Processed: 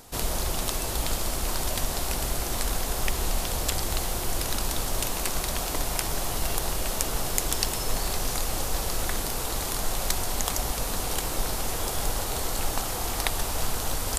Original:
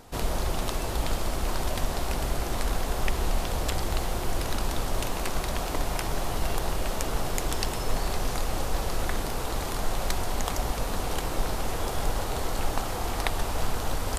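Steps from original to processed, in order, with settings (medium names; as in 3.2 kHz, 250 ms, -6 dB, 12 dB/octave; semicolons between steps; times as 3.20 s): treble shelf 4.1 kHz +11.5 dB; trim -1.5 dB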